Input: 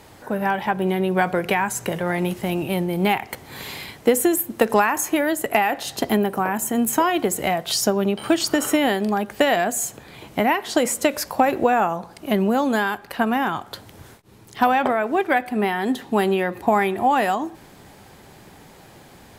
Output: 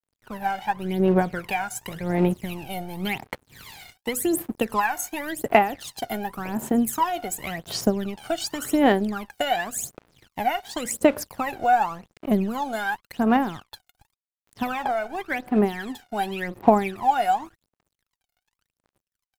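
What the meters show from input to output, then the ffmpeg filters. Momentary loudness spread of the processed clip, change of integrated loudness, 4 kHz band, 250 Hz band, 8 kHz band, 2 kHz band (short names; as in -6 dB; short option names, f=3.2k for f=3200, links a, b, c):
12 LU, -3.5 dB, -6.0 dB, -3.0 dB, -6.0 dB, -5.5 dB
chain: -af "aeval=exprs='sgn(val(0))*max(abs(val(0))-0.0126,0)':c=same,aphaser=in_gain=1:out_gain=1:delay=1.4:decay=0.78:speed=0.9:type=sinusoidal,volume=-8.5dB"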